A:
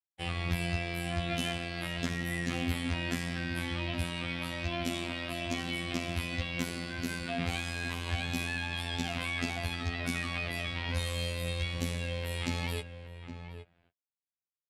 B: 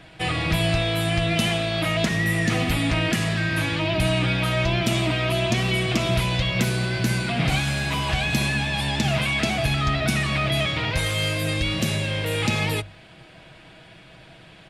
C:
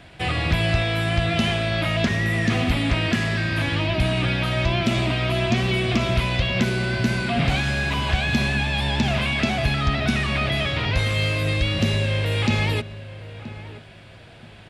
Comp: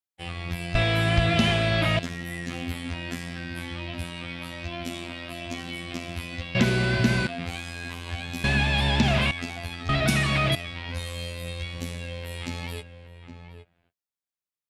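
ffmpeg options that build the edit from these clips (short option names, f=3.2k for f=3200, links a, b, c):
-filter_complex "[2:a]asplit=3[a][b][c];[0:a]asplit=5[d][e][f][g][h];[d]atrim=end=0.752[i];[a]atrim=start=0.748:end=1.992[j];[e]atrim=start=1.988:end=6.552[k];[b]atrim=start=6.548:end=7.272[l];[f]atrim=start=7.268:end=8.442[m];[c]atrim=start=8.438:end=9.312[n];[g]atrim=start=9.308:end=9.892[o];[1:a]atrim=start=9.888:end=10.552[p];[h]atrim=start=10.548[q];[i][j]acrossfade=d=0.004:c1=hsin:c2=hsin[r];[r][k]acrossfade=d=0.004:c1=hsin:c2=hsin[s];[s][l]acrossfade=d=0.004:c1=hsin:c2=hsin[t];[t][m]acrossfade=d=0.004:c1=hsin:c2=hsin[u];[u][n]acrossfade=d=0.004:c1=hsin:c2=hsin[v];[v][o]acrossfade=d=0.004:c1=hsin:c2=hsin[w];[w][p]acrossfade=d=0.004:c1=hsin:c2=hsin[x];[x][q]acrossfade=d=0.004:c1=hsin:c2=hsin"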